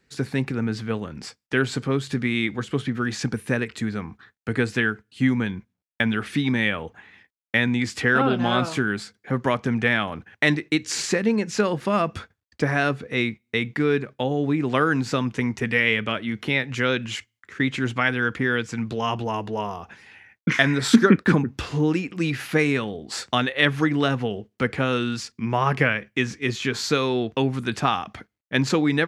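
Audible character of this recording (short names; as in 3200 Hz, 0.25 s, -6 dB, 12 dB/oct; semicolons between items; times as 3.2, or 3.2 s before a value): noise floor -79 dBFS; spectral tilt -4.5 dB/oct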